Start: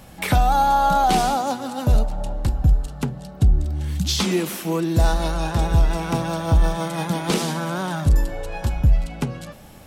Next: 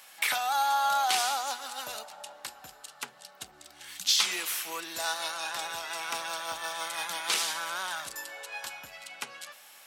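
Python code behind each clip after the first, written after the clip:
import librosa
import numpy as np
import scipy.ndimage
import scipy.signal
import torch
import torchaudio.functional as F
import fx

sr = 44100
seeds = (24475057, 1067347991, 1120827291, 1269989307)

y = scipy.signal.sosfilt(scipy.signal.butter(2, 1400.0, 'highpass', fs=sr, output='sos'), x)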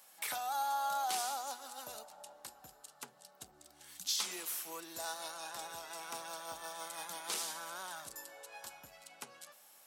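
y = fx.peak_eq(x, sr, hz=2400.0, db=-10.5, octaves=2.3)
y = y * 10.0 ** (-4.5 / 20.0)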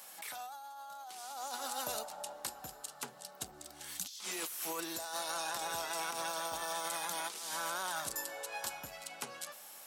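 y = fx.over_compress(x, sr, threshold_db=-46.0, ratio=-1.0)
y = y * 10.0 ** (5.0 / 20.0)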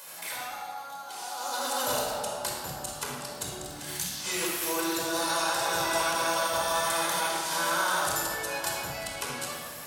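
y = fx.room_shoebox(x, sr, seeds[0], volume_m3=3200.0, walls='mixed', distance_m=5.0)
y = y * 10.0 ** (4.0 / 20.0)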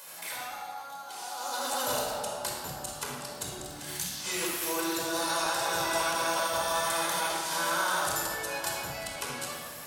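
y = fx.buffer_crackle(x, sr, first_s=0.79, period_s=0.93, block=512, kind='repeat')
y = y * 10.0 ** (-1.5 / 20.0)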